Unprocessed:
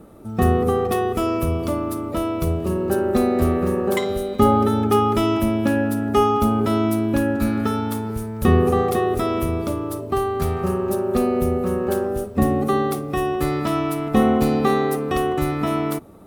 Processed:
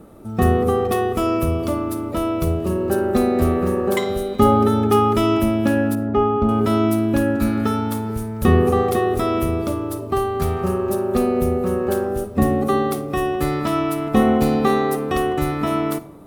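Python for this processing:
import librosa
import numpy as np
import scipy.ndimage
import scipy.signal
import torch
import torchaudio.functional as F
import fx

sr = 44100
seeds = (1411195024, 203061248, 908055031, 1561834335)

y = fx.spacing_loss(x, sr, db_at_10k=37, at=(5.95, 6.49))
y = fx.rev_freeverb(y, sr, rt60_s=0.95, hf_ratio=0.45, predelay_ms=10, drr_db=15.0)
y = y * librosa.db_to_amplitude(1.0)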